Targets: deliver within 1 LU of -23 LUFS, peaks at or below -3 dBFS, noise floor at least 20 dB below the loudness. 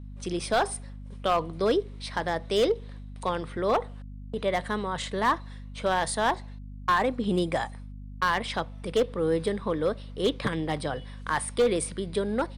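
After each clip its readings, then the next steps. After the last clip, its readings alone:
clipped samples 0.7%; clipping level -17.0 dBFS; hum 50 Hz; highest harmonic 250 Hz; hum level -38 dBFS; loudness -28.5 LUFS; peak level -17.0 dBFS; loudness target -23.0 LUFS
-> clip repair -17 dBFS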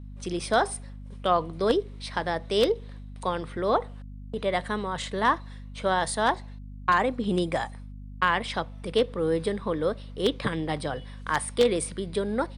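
clipped samples 0.0%; hum 50 Hz; highest harmonic 250 Hz; hum level -38 dBFS
-> de-hum 50 Hz, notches 5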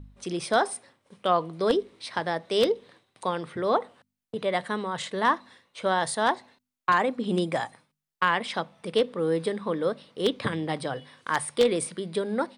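hum not found; loudness -27.5 LUFS; peak level -8.0 dBFS; loudness target -23.0 LUFS
-> trim +4.5 dB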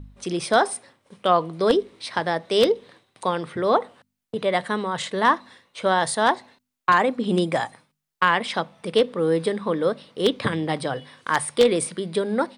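loudness -23.0 LUFS; peak level -3.5 dBFS; noise floor -80 dBFS

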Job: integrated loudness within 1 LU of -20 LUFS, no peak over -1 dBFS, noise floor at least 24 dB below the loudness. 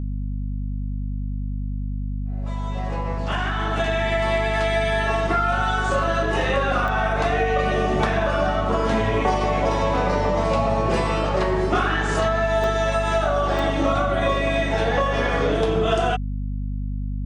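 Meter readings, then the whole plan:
dropouts 3; longest dropout 1.2 ms; hum 50 Hz; highest harmonic 250 Hz; hum level -24 dBFS; loudness -22.5 LUFS; peak level -7.0 dBFS; loudness target -20.0 LUFS
-> interpolate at 6.88/12.64/13.59 s, 1.2 ms; de-hum 50 Hz, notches 5; trim +2.5 dB

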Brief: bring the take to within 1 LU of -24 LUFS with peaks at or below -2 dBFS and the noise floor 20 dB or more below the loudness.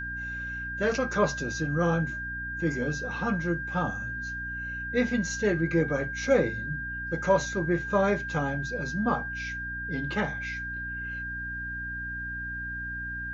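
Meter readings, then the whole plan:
hum 60 Hz; highest harmonic 300 Hz; hum level -38 dBFS; steady tone 1.6 kHz; tone level -33 dBFS; loudness -29.5 LUFS; peak level -11.5 dBFS; loudness target -24.0 LUFS
-> de-hum 60 Hz, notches 5; band-stop 1.6 kHz, Q 30; trim +5.5 dB

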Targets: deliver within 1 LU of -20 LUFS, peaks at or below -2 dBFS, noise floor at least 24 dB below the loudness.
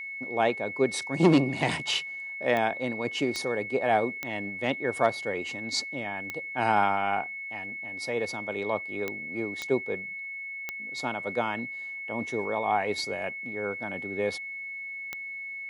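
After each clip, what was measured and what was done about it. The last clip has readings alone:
clicks found 8; steady tone 2.2 kHz; tone level -35 dBFS; loudness -29.5 LUFS; peak level -8.5 dBFS; loudness target -20.0 LUFS
-> de-click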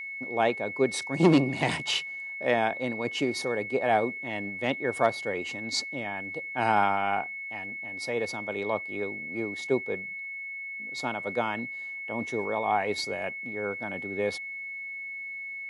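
clicks found 0; steady tone 2.2 kHz; tone level -35 dBFS
-> band-stop 2.2 kHz, Q 30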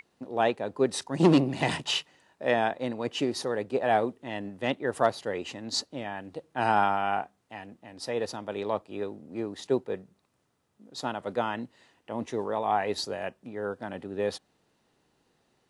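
steady tone not found; loudness -29.5 LUFS; peak level -8.5 dBFS; loudness target -20.0 LUFS
-> trim +9.5 dB; peak limiter -2 dBFS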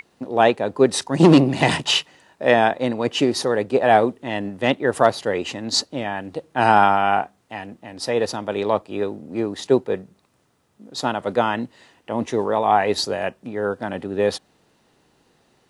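loudness -20.5 LUFS; peak level -2.0 dBFS; noise floor -63 dBFS

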